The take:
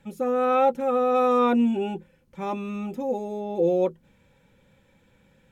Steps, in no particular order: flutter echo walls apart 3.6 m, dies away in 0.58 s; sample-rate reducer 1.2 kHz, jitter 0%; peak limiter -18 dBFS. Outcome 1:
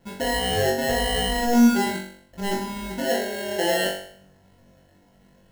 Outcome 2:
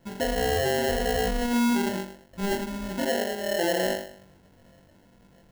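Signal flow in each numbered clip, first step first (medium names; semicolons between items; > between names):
peak limiter > sample-rate reducer > flutter echo; flutter echo > peak limiter > sample-rate reducer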